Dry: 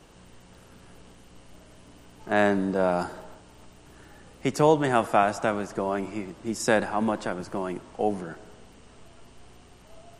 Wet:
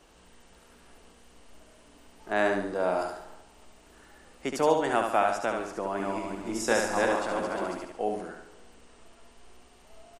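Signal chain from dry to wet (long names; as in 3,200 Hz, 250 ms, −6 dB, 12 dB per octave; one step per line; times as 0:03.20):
0:05.82–0:07.85: feedback delay that plays each chunk backwards 177 ms, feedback 42%, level −1 dB
parametric band 140 Hz −12 dB 1.2 octaves
repeating echo 71 ms, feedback 39%, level −5 dB
level −3.5 dB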